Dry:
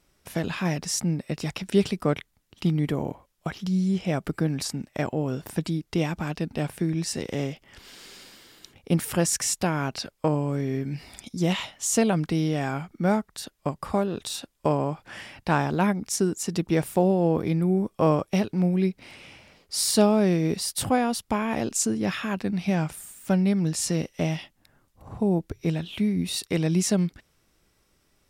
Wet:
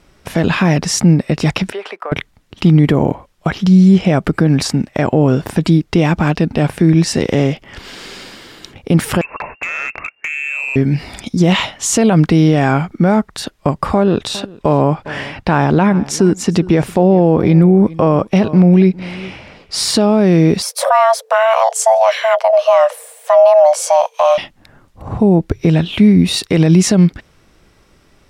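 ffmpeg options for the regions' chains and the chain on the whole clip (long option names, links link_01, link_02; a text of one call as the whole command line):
ffmpeg -i in.wav -filter_complex "[0:a]asettb=1/sr,asplit=3[link_01][link_02][link_03];[link_01]atrim=end=1.724[link_04];[link_02]atrim=start=1.72:end=2.12,asetpts=PTS-STARTPTS,afade=type=in:duration=0.004:curve=qsin,afade=type=out:start_time=0.396:duration=0.004:curve=qsin,highpass=frequency=380:width=0.5412,highpass=frequency=380:width=1.3066,acrossover=split=600 2200:gain=0.158 1 0.126[link_05][link_06][link_07];[link_05][link_06][link_07]amix=inputs=3:normalize=0,acompressor=threshold=-37dB:ratio=6:attack=3.2:release=140:knee=1:detection=peak[link_08];[link_03]atrim=start=2.116[link_09];[link_04][link_08]acrossfade=duration=0.004:curve1=hsin:curve2=qsin[link_10];[link_10][link_09]acrossfade=duration=0.004:curve1=qsin:curve2=hsin,asettb=1/sr,asplit=3[link_11][link_12][link_13];[link_11]atrim=end=9.214[link_14];[link_12]atrim=start=9.21:end=10.76,asetpts=PTS-STARTPTS,afade=type=in:duration=0.004:curve=qsin,afade=type=out:start_time=1.546:duration=0.004:curve=qsin,lowpass=frequency=2400:width_type=q:width=0.5098,lowpass=frequency=2400:width_type=q:width=0.6013,lowpass=frequency=2400:width_type=q:width=0.9,lowpass=frequency=2400:width_type=q:width=2.563,afreqshift=-2800,acompressor=threshold=-31dB:ratio=10:attack=3.2:release=140:knee=1:detection=peak,asoftclip=type=hard:threshold=-31dB[link_15];[link_13]atrim=start=10.756[link_16];[link_14][link_15]acrossfade=duration=0.004:curve1=hsin:curve2=qsin[link_17];[link_17][link_16]acrossfade=duration=0.004:curve1=qsin:curve2=hsin,asettb=1/sr,asplit=3[link_18][link_19][link_20];[link_18]atrim=end=13.944[link_21];[link_19]atrim=start=13.94:end=20.03,asetpts=PTS-STARTPTS,afade=type=in:duration=0.004:curve=qsin,afade=type=out:start_time=6.086:duration=0.004:curve=qsin,highshelf=frequency=7500:gain=-6.5,aecho=1:1:405:0.075,atrim=end_sample=268569[link_22];[link_20]atrim=start=20.026[link_23];[link_21][link_22]acrossfade=duration=0.004:curve1=hsin:curve2=qsin[link_24];[link_24][link_23]acrossfade=duration=0.004:curve1=qsin:curve2=hsin,asettb=1/sr,asplit=3[link_25][link_26][link_27];[link_25]atrim=end=20.624[link_28];[link_26]atrim=start=20.62:end=24.38,asetpts=PTS-STARTPTS,afade=type=in:duration=0.004:curve=qsin,afade=type=out:start_time=3.756:duration=0.004:curve=qsin,equalizer=frequency=2500:width_type=o:width=2.7:gain=-5.5,bandreject=frequency=880:width=11,afreqshift=440[link_29];[link_27]atrim=start=24.376[link_30];[link_28][link_29]acrossfade=duration=0.004:curve1=hsin:curve2=qsin[link_31];[link_31][link_30]acrossfade=duration=0.004:curve1=qsin:curve2=hsin,aemphasis=mode=reproduction:type=50kf,alimiter=level_in=18dB:limit=-1dB:release=50:level=0:latency=1,volume=-1dB" out.wav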